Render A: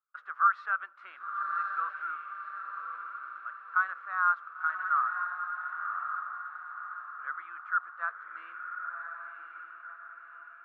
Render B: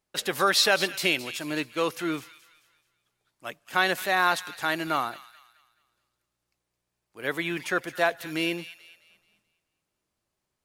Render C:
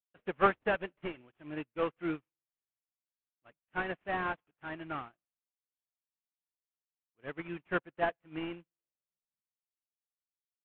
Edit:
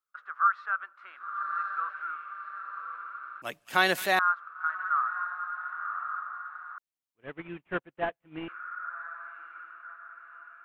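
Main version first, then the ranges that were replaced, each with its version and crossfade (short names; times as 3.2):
A
3.42–4.19 from B
6.78–8.48 from C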